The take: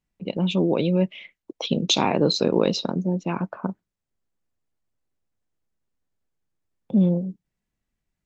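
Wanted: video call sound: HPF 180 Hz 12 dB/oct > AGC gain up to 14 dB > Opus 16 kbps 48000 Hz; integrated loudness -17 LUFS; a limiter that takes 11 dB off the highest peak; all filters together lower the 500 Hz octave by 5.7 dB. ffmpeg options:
-af "equalizer=f=500:t=o:g=-7,alimiter=limit=-18dB:level=0:latency=1,highpass=180,dynaudnorm=m=14dB,volume=13.5dB" -ar 48000 -c:a libopus -b:a 16k

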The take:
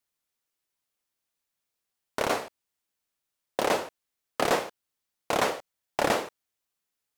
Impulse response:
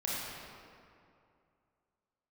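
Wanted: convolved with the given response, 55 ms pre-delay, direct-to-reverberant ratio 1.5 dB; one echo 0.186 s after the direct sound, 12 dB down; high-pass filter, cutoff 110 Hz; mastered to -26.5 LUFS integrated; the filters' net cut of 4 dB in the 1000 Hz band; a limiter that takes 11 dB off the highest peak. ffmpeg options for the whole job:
-filter_complex "[0:a]highpass=110,equalizer=f=1k:t=o:g=-5.5,alimiter=limit=-23.5dB:level=0:latency=1,aecho=1:1:186:0.251,asplit=2[a][b];[1:a]atrim=start_sample=2205,adelay=55[c];[b][c]afir=irnorm=-1:irlink=0,volume=-7dB[d];[a][d]amix=inputs=2:normalize=0,volume=10dB"

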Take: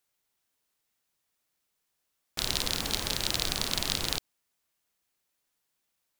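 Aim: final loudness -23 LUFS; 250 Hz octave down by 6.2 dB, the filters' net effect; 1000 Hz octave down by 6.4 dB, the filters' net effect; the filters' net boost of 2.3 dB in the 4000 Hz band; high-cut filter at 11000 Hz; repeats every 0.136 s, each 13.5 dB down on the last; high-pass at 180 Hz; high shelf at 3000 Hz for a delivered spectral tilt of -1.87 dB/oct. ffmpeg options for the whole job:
-af "highpass=180,lowpass=11k,equalizer=f=250:t=o:g=-6,equalizer=f=1k:t=o:g=-8,highshelf=f=3k:g=-4,equalizer=f=4k:t=o:g=6,aecho=1:1:136|272:0.211|0.0444,volume=5.5dB"

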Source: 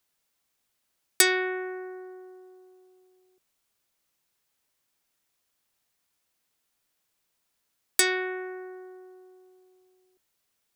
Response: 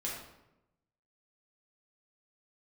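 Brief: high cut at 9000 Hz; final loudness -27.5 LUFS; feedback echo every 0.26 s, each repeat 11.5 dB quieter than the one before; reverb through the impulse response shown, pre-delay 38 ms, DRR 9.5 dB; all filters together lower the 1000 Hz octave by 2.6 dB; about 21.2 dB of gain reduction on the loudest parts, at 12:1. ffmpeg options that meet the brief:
-filter_complex "[0:a]lowpass=9k,equalizer=f=1k:t=o:g=-4,acompressor=threshold=-40dB:ratio=12,aecho=1:1:260|520|780:0.266|0.0718|0.0194,asplit=2[a][b];[1:a]atrim=start_sample=2205,adelay=38[c];[b][c]afir=irnorm=-1:irlink=0,volume=-12dB[d];[a][d]amix=inputs=2:normalize=0,volume=17dB"

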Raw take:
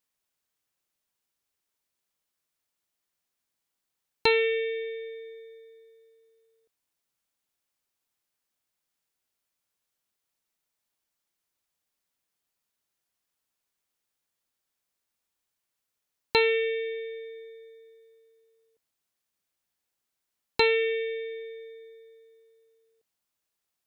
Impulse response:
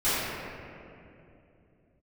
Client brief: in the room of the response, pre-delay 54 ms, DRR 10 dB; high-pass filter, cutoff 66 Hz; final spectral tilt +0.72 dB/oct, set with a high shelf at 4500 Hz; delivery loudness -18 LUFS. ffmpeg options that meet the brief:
-filter_complex "[0:a]highpass=66,highshelf=f=4.5k:g=-8.5,asplit=2[a][b];[1:a]atrim=start_sample=2205,adelay=54[c];[b][c]afir=irnorm=-1:irlink=0,volume=-25dB[d];[a][d]amix=inputs=2:normalize=0,volume=9.5dB"

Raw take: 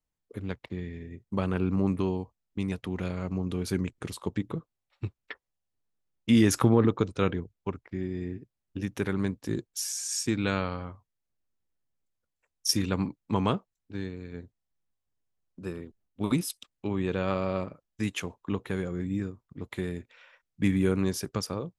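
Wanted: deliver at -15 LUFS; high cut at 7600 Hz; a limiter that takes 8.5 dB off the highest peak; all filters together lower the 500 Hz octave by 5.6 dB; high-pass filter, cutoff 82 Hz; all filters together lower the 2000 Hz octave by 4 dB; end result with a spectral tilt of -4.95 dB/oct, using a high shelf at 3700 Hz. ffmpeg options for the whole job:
-af "highpass=82,lowpass=7.6k,equalizer=f=500:t=o:g=-7.5,equalizer=f=2k:t=o:g=-6,highshelf=f=3.7k:g=4.5,volume=18.5dB,alimiter=limit=-0.5dB:level=0:latency=1"

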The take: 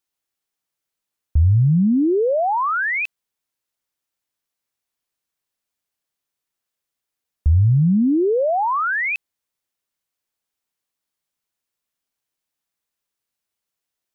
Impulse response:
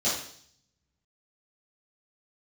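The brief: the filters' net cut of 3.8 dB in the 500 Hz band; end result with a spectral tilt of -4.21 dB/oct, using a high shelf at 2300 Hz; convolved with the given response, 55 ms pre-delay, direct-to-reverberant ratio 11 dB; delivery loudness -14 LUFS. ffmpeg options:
-filter_complex "[0:a]equalizer=f=500:t=o:g=-5.5,highshelf=f=2.3k:g=8,asplit=2[a][b];[1:a]atrim=start_sample=2205,adelay=55[c];[b][c]afir=irnorm=-1:irlink=0,volume=-22dB[d];[a][d]amix=inputs=2:normalize=0,volume=4dB"

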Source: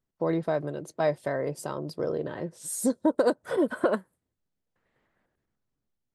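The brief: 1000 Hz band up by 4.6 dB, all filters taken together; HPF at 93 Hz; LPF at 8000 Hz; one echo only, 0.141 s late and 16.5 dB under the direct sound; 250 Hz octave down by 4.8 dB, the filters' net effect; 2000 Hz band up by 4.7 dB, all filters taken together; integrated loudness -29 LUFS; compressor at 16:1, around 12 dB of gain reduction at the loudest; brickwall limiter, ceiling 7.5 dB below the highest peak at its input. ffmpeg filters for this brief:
-af "highpass=93,lowpass=8k,equalizer=f=250:t=o:g=-7,equalizer=f=1k:t=o:g=5.5,equalizer=f=2k:t=o:g=4,acompressor=threshold=-29dB:ratio=16,alimiter=level_in=0.5dB:limit=-24dB:level=0:latency=1,volume=-0.5dB,aecho=1:1:141:0.15,volume=8dB"

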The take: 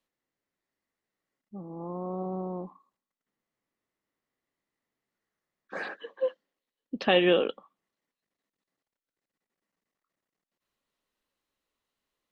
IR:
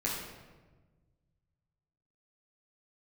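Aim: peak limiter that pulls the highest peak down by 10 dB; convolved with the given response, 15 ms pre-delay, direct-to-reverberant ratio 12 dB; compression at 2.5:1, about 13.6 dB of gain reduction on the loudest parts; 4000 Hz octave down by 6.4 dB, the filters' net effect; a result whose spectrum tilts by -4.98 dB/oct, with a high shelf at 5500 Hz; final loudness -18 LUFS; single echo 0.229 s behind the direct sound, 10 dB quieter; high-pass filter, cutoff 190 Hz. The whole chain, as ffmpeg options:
-filter_complex "[0:a]highpass=190,equalizer=f=4k:t=o:g=-8.5,highshelf=f=5.5k:g=-6,acompressor=threshold=-40dB:ratio=2.5,alimiter=level_in=9dB:limit=-24dB:level=0:latency=1,volume=-9dB,aecho=1:1:229:0.316,asplit=2[a][b];[1:a]atrim=start_sample=2205,adelay=15[c];[b][c]afir=irnorm=-1:irlink=0,volume=-17.5dB[d];[a][d]amix=inputs=2:normalize=0,volume=25.5dB"

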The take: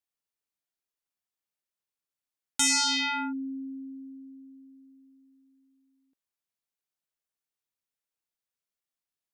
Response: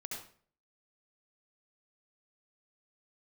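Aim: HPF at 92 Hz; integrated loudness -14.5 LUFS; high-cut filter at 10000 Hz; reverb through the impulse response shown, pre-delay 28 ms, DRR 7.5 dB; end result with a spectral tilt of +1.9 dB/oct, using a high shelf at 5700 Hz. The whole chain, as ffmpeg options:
-filter_complex "[0:a]highpass=92,lowpass=10k,highshelf=f=5.7k:g=-5.5,asplit=2[a][b];[1:a]atrim=start_sample=2205,adelay=28[c];[b][c]afir=irnorm=-1:irlink=0,volume=-6.5dB[d];[a][d]amix=inputs=2:normalize=0,volume=14dB"

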